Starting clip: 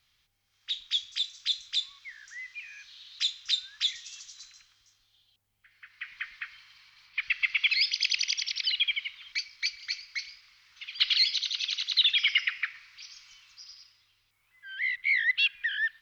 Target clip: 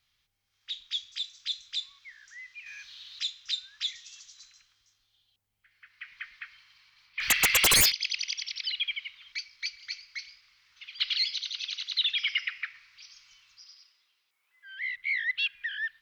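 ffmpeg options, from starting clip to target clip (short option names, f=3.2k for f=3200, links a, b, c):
-filter_complex "[0:a]asettb=1/sr,asplit=3[a][b][c];[a]atrim=end=2.664[d];[b]atrim=start=2.66:end=3.2,asetpts=PTS-STARTPTS,afade=t=in:d=0.004:c=qsin,afade=t=out:st=0.536:d=0.004:c=qsin,acontrast=69[e];[c]atrim=start=3.196[f];[d][e]acrossfade=d=0.004:c1=hsin:c2=qsin[g];[g][f]acrossfade=d=0.004:c1=qsin:c2=hsin,asplit=3[h][i][j];[h]afade=t=out:st=7.2:d=0.02[k];[i]aeval=exprs='0.237*sin(PI/2*6.31*val(0)/0.237)':c=same,afade=t=in:st=7.2:d=0.02,afade=t=out:st=7.9:d=0.02[l];[j]afade=t=in:st=7.9:d=0.02[m];[k][l][m]amix=inputs=3:normalize=0,asettb=1/sr,asplit=3[n][o][p];[n]atrim=end=13.644[q];[o]atrim=start=13.64:end=14.78,asetpts=PTS-STARTPTS,afade=t=in:d=0.004:c=qsin,afade=t=out:st=1.136:d=0.004:c=qsin,highpass=340[r];[p]atrim=start=14.776[s];[q][r]acrossfade=d=0.004:c1=hsin:c2=qsin[t];[t][s]acrossfade=d=0.004:c1=qsin:c2=hsin,volume=-4dB"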